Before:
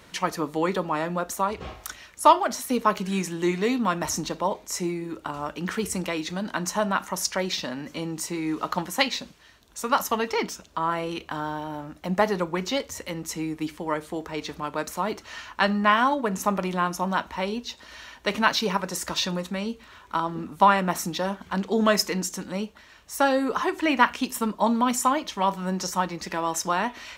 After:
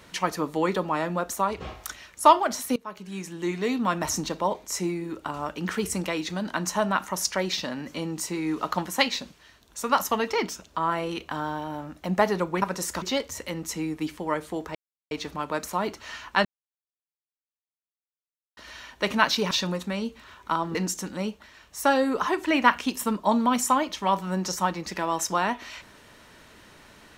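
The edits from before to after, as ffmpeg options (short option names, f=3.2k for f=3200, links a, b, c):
-filter_complex "[0:a]asplit=9[a][b][c][d][e][f][g][h][i];[a]atrim=end=2.76,asetpts=PTS-STARTPTS,afade=t=out:st=2.756:d=0.004:c=hsin:silence=0.0668344[j];[b]atrim=start=2.76:end=12.622,asetpts=PTS-STARTPTS,afade=t=in:d=1.24:silence=0.0668344[k];[c]atrim=start=18.748:end=19.152[l];[d]atrim=start=12.618:end=14.35,asetpts=PTS-STARTPTS,afade=t=out:st=1.728:d=0.004:c=hsin,apad=pad_dur=0.36[m];[e]atrim=start=14.35:end=15.69,asetpts=PTS-STARTPTS,afade=t=in:d=0.004:c=hsin,afade=t=out:st=1.336:d=0.004:c=hsin[n];[f]atrim=start=15.69:end=17.81,asetpts=PTS-STARTPTS,volume=0[o];[g]atrim=start=17.81:end=18.752,asetpts=PTS-STARTPTS,afade=t=in:d=0.004:c=hsin[p];[h]atrim=start=19.148:end=20.392[q];[i]atrim=start=22.098[r];[j][k]concat=n=2:v=0:a=1[s];[s][l]acrossfade=d=0.004:c1=hsin:c2=hsin[t];[m][n][o][p]concat=n=4:v=0:a=1[u];[t][u]acrossfade=d=0.004:c1=hsin:c2=hsin[v];[v][q]acrossfade=d=0.004:c1=hsin:c2=hsin[w];[w][r]acrossfade=d=0.004:c1=hsin:c2=hsin"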